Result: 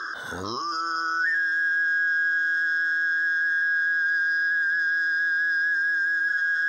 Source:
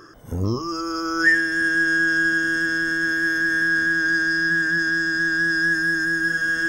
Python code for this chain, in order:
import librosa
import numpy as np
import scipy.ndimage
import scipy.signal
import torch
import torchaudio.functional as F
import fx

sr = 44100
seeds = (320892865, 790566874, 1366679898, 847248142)

y = fx.double_bandpass(x, sr, hz=2400.0, octaves=1.3)
y = fx.env_flatten(y, sr, amount_pct=70)